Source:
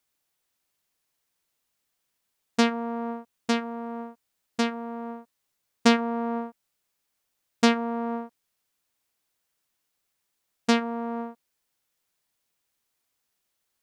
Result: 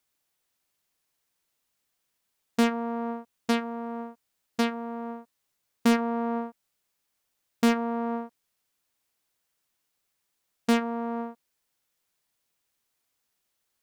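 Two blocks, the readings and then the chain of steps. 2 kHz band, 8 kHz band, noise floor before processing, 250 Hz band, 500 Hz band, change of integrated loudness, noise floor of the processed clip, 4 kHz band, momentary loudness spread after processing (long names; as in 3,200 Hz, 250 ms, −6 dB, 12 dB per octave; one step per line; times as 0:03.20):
−3.0 dB, −3.5 dB, −79 dBFS, −0.5 dB, −1.0 dB, −1.5 dB, −79 dBFS, −5.0 dB, 14 LU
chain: gain into a clipping stage and back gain 16 dB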